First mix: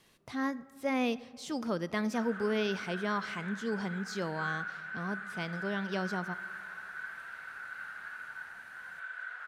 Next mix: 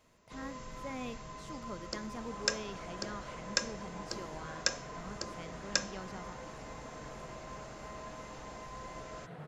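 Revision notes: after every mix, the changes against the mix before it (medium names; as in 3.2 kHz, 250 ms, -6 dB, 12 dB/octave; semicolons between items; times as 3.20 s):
speech -11.5 dB; first sound: unmuted; second sound: remove resonant high-pass 1.5 kHz, resonance Q 14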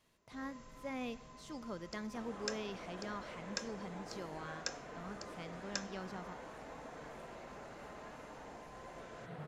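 first sound -10.0 dB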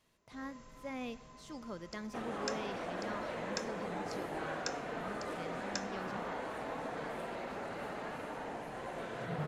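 second sound +9.5 dB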